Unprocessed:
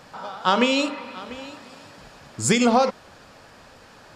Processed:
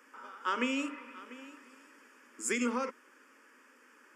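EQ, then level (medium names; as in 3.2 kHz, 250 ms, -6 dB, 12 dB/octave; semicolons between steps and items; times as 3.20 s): Chebyshev high-pass 250 Hz, order 5; static phaser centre 1.7 kHz, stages 4; -7.5 dB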